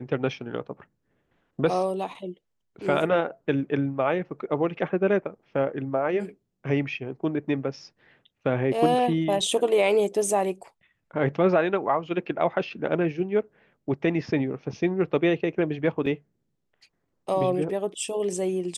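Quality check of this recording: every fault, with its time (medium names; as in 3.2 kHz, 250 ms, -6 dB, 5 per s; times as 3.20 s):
16.06 s: dropout 3.9 ms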